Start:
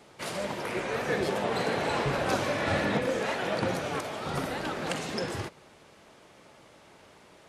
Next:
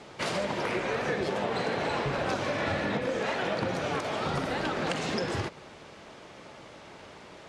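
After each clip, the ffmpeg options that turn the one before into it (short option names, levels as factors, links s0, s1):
-af "lowpass=6600,acompressor=threshold=0.02:ratio=6,volume=2.24"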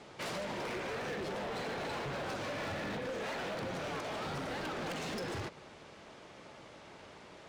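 -af "asoftclip=type=hard:threshold=0.0282,volume=0.562"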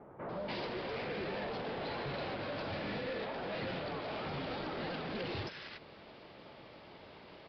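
-filter_complex "[0:a]acrossover=split=1400[s0][s1];[s1]adelay=290[s2];[s0][s2]amix=inputs=2:normalize=0,aresample=11025,aresample=44100"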